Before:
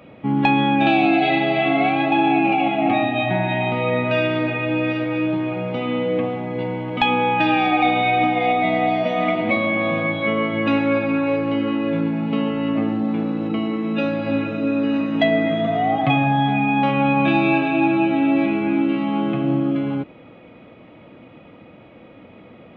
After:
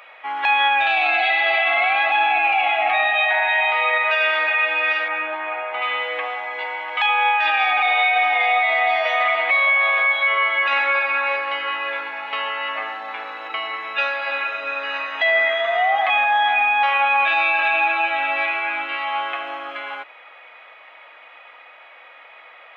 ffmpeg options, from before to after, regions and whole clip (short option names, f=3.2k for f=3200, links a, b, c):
-filter_complex "[0:a]asettb=1/sr,asplit=3[a][b][c];[a]atrim=end=5.084[d];[b]atrim=start=5.08:end=5.82,asetpts=PTS-STARTPTS,afade=t=in:d=0.004:c=qsin,afade=t=out:st=0.736:d=0.004:c=qsin,highpass=300,lowpass=2.3k,lowshelf=f=390:g=10,bandreject=f=520:w=5.8[e];[c]atrim=start=5.816[f];[d][e]acrossfade=d=0.004:c1=hsin:c2=qsin[g];[g][f]acrossfade=d=0.004:c1=qsin:c2=hsin,highpass=f=790:w=0.5412,highpass=f=790:w=1.3066,equalizer=f=1.8k:t=o:w=0.71:g=7,alimiter=limit=-16.5dB:level=0:latency=1:release=15,volume=6dB"